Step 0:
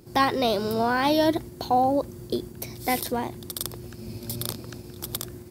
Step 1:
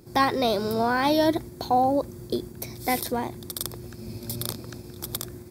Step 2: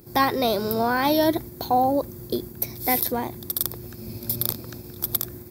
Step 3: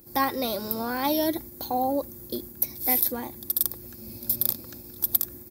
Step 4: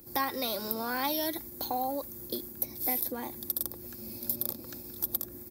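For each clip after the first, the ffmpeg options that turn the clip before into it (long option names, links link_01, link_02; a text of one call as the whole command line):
ffmpeg -i in.wav -af "bandreject=frequency=2900:width=6.9" out.wav
ffmpeg -i in.wav -af "aexciter=amount=3.6:drive=6.7:freq=12000,volume=1dB" out.wav
ffmpeg -i in.wav -af "aecho=1:1:3.6:0.45,crystalizer=i=1:c=0,volume=-7dB" out.wav
ffmpeg -i in.wav -filter_complex "[0:a]acrossover=split=200|1000[link_01][link_02][link_03];[link_01]acompressor=threshold=-52dB:ratio=4[link_04];[link_02]acompressor=threshold=-35dB:ratio=4[link_05];[link_03]acompressor=threshold=-29dB:ratio=4[link_06];[link_04][link_05][link_06]amix=inputs=3:normalize=0" out.wav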